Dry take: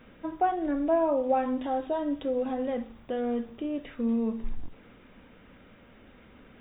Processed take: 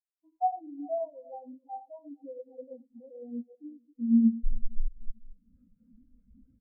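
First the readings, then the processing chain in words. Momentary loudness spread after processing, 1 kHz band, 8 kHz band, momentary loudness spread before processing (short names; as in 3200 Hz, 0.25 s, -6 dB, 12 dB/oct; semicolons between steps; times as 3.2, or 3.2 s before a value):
23 LU, -5.0 dB, n/a, 10 LU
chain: regenerating reverse delay 0.222 s, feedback 41%, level -7 dB; recorder AGC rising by 41 dB/s; bell 350 Hz -7 dB 0.42 oct; in parallel at +3 dB: limiter -23.5 dBFS, peak gain reduction 9.5 dB; on the sum: notch 580 Hz, Q 12; on a send: feedback echo 0.113 s, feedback 26%, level -9 dB; on the sum: spectral expander 4:1; gain -5 dB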